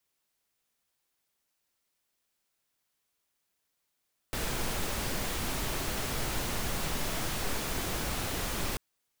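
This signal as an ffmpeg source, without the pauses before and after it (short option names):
-f lavfi -i "anoisesrc=c=pink:a=0.122:d=4.44:r=44100:seed=1"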